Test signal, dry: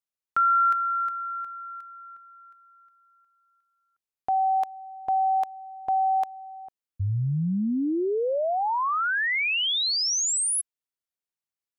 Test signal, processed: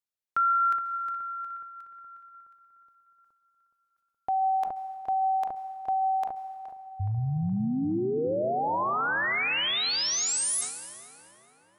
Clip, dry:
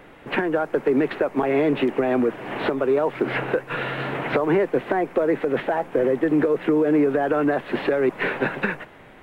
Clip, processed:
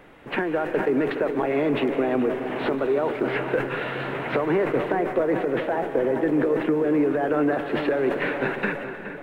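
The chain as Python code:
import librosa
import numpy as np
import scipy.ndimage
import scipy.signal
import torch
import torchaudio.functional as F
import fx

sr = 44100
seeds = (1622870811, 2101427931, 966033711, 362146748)

y = fx.echo_filtered(x, sr, ms=420, feedback_pct=61, hz=2300.0, wet_db=-11.0)
y = fx.rev_plate(y, sr, seeds[0], rt60_s=2.2, hf_ratio=0.8, predelay_ms=120, drr_db=10.0)
y = fx.sustainer(y, sr, db_per_s=81.0)
y = y * librosa.db_to_amplitude(-3.0)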